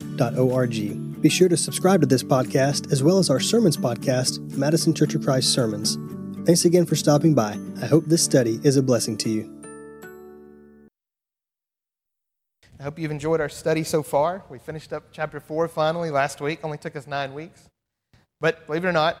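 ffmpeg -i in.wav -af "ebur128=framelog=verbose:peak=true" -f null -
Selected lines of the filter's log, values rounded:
Integrated loudness:
  I:         -21.6 LUFS
  Threshold: -32.5 LUFS
Loudness range:
  LRA:         8.9 LU
  Threshold: -42.9 LUFS
  LRA low:   -28.7 LUFS
  LRA high:  -19.8 LUFS
True peak:
  Peak:       -3.6 dBFS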